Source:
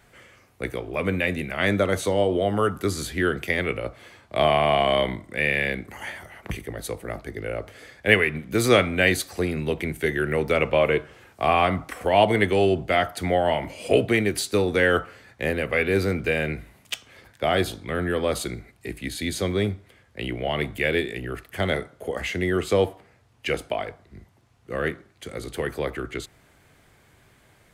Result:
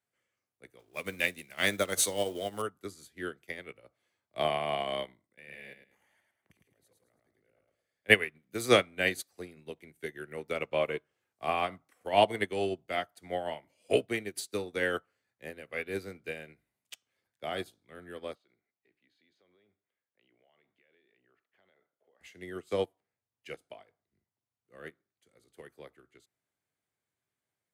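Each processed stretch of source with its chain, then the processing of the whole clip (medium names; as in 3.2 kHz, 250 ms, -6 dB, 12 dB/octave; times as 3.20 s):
0.79–2.62 s: companding laws mixed up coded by mu + treble shelf 2.4 kHz +10.5 dB
5.26–8.10 s: level held to a coarse grid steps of 14 dB + feedback delay 108 ms, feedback 38%, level -3 dB
18.35–22.21 s: high-pass 530 Hz 6 dB/octave + compression, threshold -31 dBFS + distance through air 270 m
whole clip: high-pass 100 Hz; tone controls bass -2 dB, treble +6 dB; upward expansion 2.5:1, over -33 dBFS; trim -2 dB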